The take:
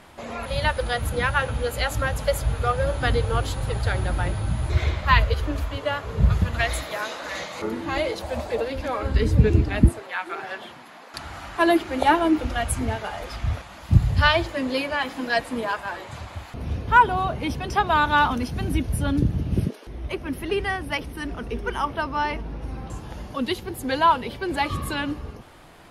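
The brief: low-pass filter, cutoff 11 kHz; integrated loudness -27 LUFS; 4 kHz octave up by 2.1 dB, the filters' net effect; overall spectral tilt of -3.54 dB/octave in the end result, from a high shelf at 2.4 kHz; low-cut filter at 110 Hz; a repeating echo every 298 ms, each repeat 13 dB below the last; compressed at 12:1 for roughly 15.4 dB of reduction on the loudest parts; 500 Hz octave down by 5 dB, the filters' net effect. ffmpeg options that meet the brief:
-af "highpass=110,lowpass=11000,equalizer=f=500:t=o:g=-6.5,highshelf=f=2400:g=-3.5,equalizer=f=4000:t=o:g=6,acompressor=threshold=0.0447:ratio=12,aecho=1:1:298|596|894:0.224|0.0493|0.0108,volume=1.88"

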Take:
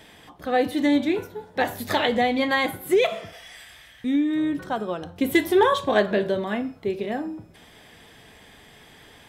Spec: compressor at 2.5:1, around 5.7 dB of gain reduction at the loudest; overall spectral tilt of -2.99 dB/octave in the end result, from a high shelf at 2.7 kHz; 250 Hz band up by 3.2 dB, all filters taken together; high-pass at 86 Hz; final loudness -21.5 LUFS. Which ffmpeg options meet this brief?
-af "highpass=86,equalizer=f=250:t=o:g=4,highshelf=f=2700:g=5.5,acompressor=threshold=0.0891:ratio=2.5,volume=1.58"

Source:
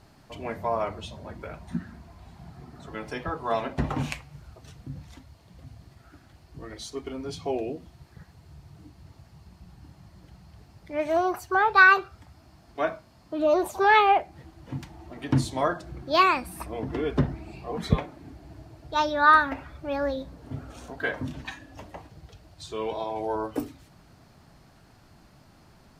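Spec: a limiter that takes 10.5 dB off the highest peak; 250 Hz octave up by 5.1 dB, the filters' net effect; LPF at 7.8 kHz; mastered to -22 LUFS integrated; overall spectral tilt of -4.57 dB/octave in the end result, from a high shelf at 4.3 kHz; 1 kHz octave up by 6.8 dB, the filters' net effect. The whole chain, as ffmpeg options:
-af "lowpass=7800,equalizer=f=250:t=o:g=6,equalizer=f=1000:t=o:g=8.5,highshelf=f=4300:g=-4,volume=1.33,alimiter=limit=0.376:level=0:latency=1"

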